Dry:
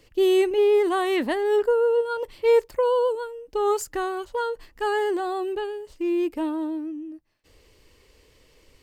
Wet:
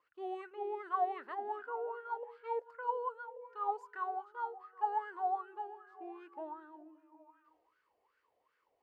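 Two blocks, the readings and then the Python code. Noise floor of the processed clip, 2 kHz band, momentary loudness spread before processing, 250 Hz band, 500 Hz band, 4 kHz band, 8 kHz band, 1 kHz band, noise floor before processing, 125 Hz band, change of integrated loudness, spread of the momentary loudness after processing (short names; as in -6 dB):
-80 dBFS, -16.0 dB, 11 LU, -26.0 dB, -22.0 dB, under -25 dB, under -35 dB, -6.5 dB, -58 dBFS, n/a, -16.0 dB, 13 LU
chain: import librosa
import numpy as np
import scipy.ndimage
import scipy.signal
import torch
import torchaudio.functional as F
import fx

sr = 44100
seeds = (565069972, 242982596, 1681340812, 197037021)

y = fx.echo_stepped(x, sr, ms=192, hz=220.0, octaves=0.7, feedback_pct=70, wet_db=-8)
y = fx.wah_lfo(y, sr, hz=2.6, low_hz=690.0, high_hz=1500.0, q=12.0)
y = y * 10.0 ** (1.5 / 20.0)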